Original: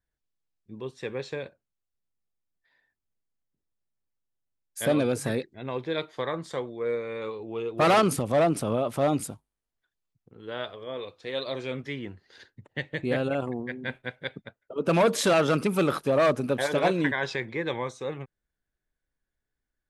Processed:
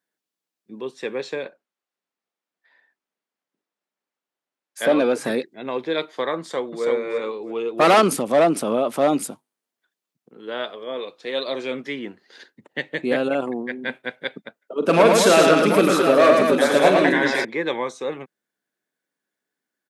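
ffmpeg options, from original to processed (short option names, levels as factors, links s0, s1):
-filter_complex "[0:a]asettb=1/sr,asplit=3[s0][s1][s2];[s0]atrim=end=1.444[s3];[s1]atrim=start=1.44:end=5.25,asetpts=PTS-STARTPTS,afade=t=in:d=0.004:c=qsin,afade=t=out:st=3.806:d=0.004:c=qsin,asplit=2[s4][s5];[s5]highpass=f=720:p=1,volume=3.55,asoftclip=type=tanh:threshold=0.224[s6];[s4][s6]amix=inputs=2:normalize=0,lowpass=f=1800:p=1,volume=0.501[s7];[s2]atrim=start=5.246[s8];[s3][s7]acrossfade=d=0.004:c1=hsin:c2=qsin[s9];[s9][s8]acrossfade=d=0.004:c1=qsin:c2=hsin,asplit=2[s10][s11];[s11]afade=t=in:st=6.39:d=0.01,afade=t=out:st=6.86:d=0.01,aecho=0:1:330|660|990:0.749894|0.149979|0.0299958[s12];[s10][s12]amix=inputs=2:normalize=0,asettb=1/sr,asplit=3[s13][s14][s15];[s13]atrim=end=14.784[s16];[s14]atrim=start=14.78:end=17.45,asetpts=PTS-STARTPTS,afade=t=in:d=0.004:c=qsin,afade=t=out:st=2.666:d=0.004:c=qsin,aecho=1:1:42|110|208|738:0.355|0.668|0.501|0.398,atrim=end_sample=117747[s17];[s15]atrim=start=17.446[s18];[s16][s17]acrossfade=d=0.004:c1=hsin:c2=qsin[s19];[s19][s18]acrossfade=d=0.004:c1=qsin:c2=hsin,highpass=f=200:w=0.5412,highpass=f=200:w=1.3066,volume=2"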